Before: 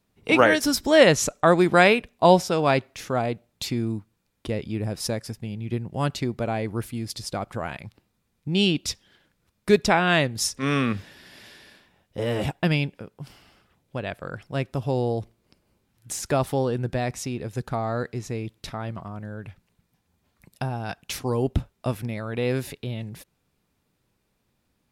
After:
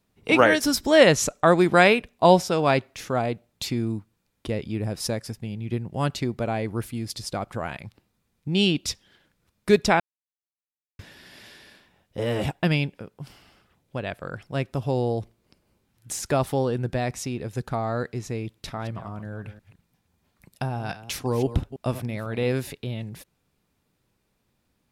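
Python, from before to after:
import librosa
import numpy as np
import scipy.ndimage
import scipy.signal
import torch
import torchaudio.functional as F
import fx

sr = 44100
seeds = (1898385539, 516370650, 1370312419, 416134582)

y = fx.reverse_delay(x, sr, ms=167, wet_db=-12.5, at=(18.59, 22.53))
y = fx.edit(y, sr, fx.silence(start_s=10.0, length_s=0.99), tone=tone)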